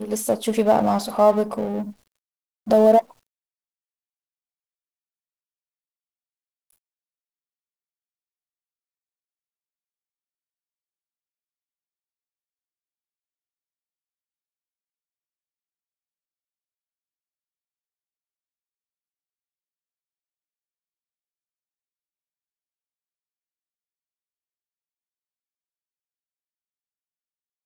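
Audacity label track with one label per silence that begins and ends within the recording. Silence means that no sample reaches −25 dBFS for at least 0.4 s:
1.830000	2.690000	silence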